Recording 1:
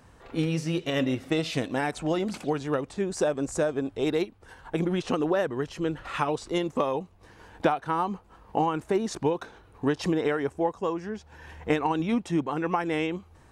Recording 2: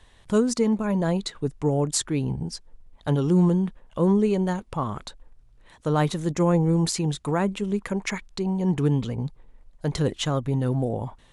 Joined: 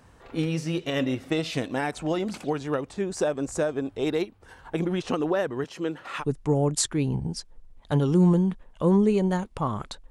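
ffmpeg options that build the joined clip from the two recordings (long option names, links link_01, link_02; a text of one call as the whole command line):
ffmpeg -i cue0.wav -i cue1.wav -filter_complex "[0:a]asettb=1/sr,asplit=3[link_01][link_02][link_03];[link_01]atrim=end=5.644[link_04];[link_02]atrim=start=5.64:end=6.24,asetpts=PTS-STARTPTS,afade=type=in:duration=0.004:curve=qsin,afade=type=out:start_time=0.596:duration=0.004:curve=qsin,highpass=200[link_05];[link_03]atrim=start=6.236[link_06];[link_04][link_05]acrossfade=duration=0.004:curve1=hsin:curve2=qsin[link_07];[link_07][link_06]acrossfade=duration=0.004:curve1=qsin:curve2=hsin,apad=whole_dur=10.1,atrim=end=10.1,atrim=end=6.24,asetpts=PTS-STARTPTS[link_08];[1:a]atrim=start=1.34:end=5.26,asetpts=PTS-STARTPTS[link_09];[link_08][link_09]acrossfade=duration=0.06:curve1=tri:curve2=tri" out.wav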